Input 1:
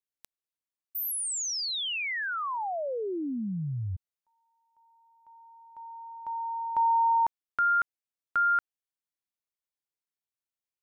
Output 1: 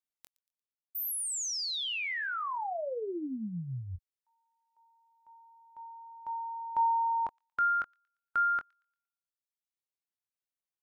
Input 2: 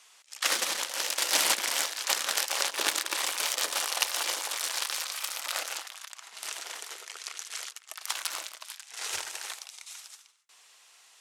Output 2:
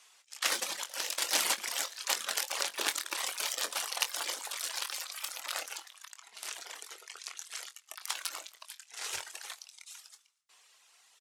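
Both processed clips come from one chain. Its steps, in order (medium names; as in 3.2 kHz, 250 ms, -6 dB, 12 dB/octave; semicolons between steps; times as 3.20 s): reverb removal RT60 1.3 s; doubling 23 ms -10 dB; on a send: feedback echo behind a high-pass 116 ms, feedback 37%, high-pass 2.8 kHz, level -22 dB; on the sum: trim -3 dB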